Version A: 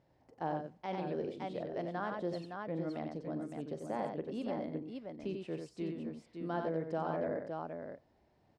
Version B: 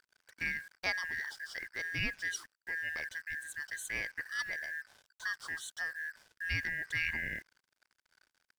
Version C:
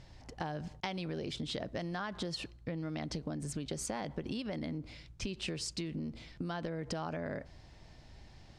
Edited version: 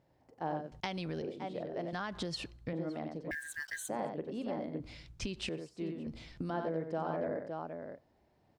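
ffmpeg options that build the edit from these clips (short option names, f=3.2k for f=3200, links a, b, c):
-filter_complex "[2:a]asplit=4[a][b][c][d];[0:a]asplit=6[e][f][g][h][i][j];[e]atrim=end=0.722[k];[a]atrim=start=0.718:end=1.222[l];[f]atrim=start=1.218:end=1.932[m];[b]atrim=start=1.928:end=2.732[n];[g]atrim=start=2.728:end=3.312[o];[1:a]atrim=start=3.308:end=3.892[p];[h]atrim=start=3.888:end=4.802[q];[c]atrim=start=4.798:end=5.492[r];[i]atrim=start=5.488:end=6.072[s];[d]atrim=start=6.068:end=6.502[t];[j]atrim=start=6.498[u];[k][l]acrossfade=d=0.004:c1=hsin:c2=hsin[v];[v][m]acrossfade=d=0.004:c1=hsin:c2=hsin[w];[w][n]acrossfade=d=0.004:c1=hsin:c2=hsin[x];[x][o]acrossfade=d=0.004:c1=hsin:c2=hsin[y];[y][p]acrossfade=d=0.004:c1=hsin:c2=hsin[z];[z][q]acrossfade=d=0.004:c1=hsin:c2=hsin[aa];[aa][r]acrossfade=d=0.004:c1=hsin:c2=hsin[ab];[ab][s]acrossfade=d=0.004:c1=hsin:c2=hsin[ac];[ac][t]acrossfade=d=0.004:c1=hsin:c2=hsin[ad];[ad][u]acrossfade=d=0.004:c1=hsin:c2=hsin"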